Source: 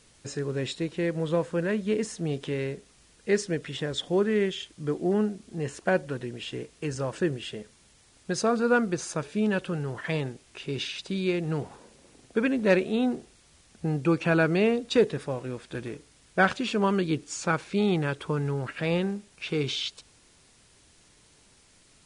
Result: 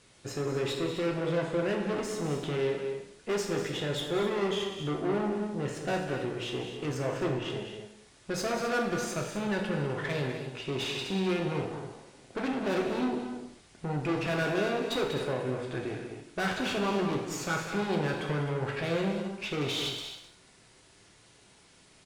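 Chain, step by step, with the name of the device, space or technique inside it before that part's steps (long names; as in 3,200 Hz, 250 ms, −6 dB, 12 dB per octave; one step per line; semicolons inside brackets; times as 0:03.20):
0:07.04–0:07.50: bass and treble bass 0 dB, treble −10 dB
tube preamp driven hard (tube saturation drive 32 dB, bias 0.65; low-shelf EQ 100 Hz −8 dB; high-shelf EQ 4,900 Hz −7 dB)
loudspeakers that aren't time-aligned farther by 67 metres −10 dB, 88 metres −11 dB
reverb whose tail is shaped and stops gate 240 ms falling, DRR 1 dB
level +3.5 dB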